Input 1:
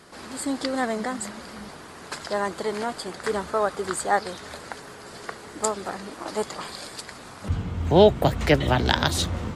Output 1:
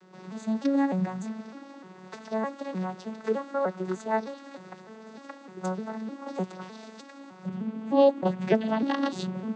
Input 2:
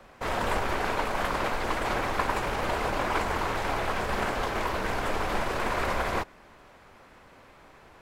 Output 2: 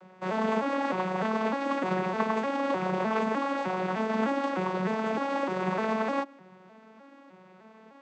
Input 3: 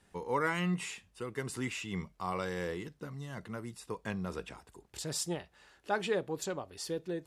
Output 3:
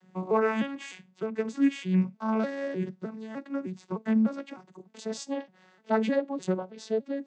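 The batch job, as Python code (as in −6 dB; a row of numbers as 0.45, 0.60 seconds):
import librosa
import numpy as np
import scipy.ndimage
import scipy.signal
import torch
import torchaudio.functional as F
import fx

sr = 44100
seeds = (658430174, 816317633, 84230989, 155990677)

y = fx.vocoder_arp(x, sr, chord='minor triad', root=54, every_ms=304)
y = y * 10.0 ** (-30 / 20.0) / np.sqrt(np.mean(np.square(y)))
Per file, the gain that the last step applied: −2.5, +1.5, +8.5 decibels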